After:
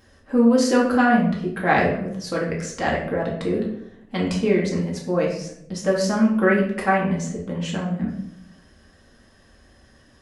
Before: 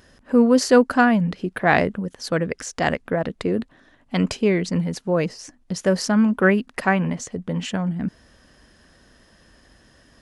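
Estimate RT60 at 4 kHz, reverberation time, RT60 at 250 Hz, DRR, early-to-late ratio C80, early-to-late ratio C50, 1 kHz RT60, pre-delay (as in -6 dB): 0.45 s, 0.75 s, 0.95 s, -4.0 dB, 8.5 dB, 5.0 dB, 0.65 s, 4 ms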